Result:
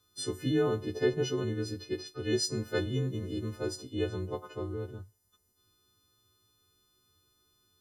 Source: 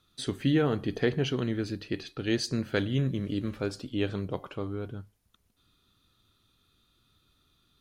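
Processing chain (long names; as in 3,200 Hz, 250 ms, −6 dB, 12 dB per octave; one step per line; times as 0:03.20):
every partial snapped to a pitch grid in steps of 3 semitones
graphic EQ with 15 bands 100 Hz +10 dB, 400 Hz +11 dB, 1,000 Hz +4 dB, 2,500 Hz −7 dB, 6,300 Hz +3 dB
level −8.5 dB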